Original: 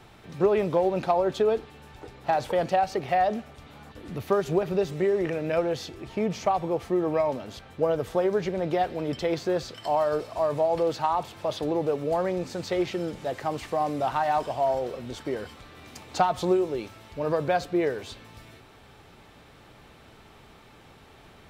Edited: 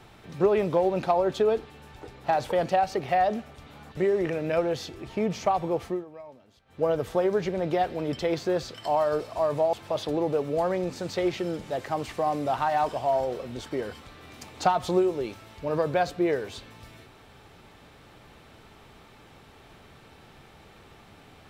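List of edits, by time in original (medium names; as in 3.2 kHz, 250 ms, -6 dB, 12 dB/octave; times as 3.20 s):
3.97–4.97 s: delete
6.85–7.86 s: dip -19.5 dB, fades 0.20 s
10.73–11.27 s: delete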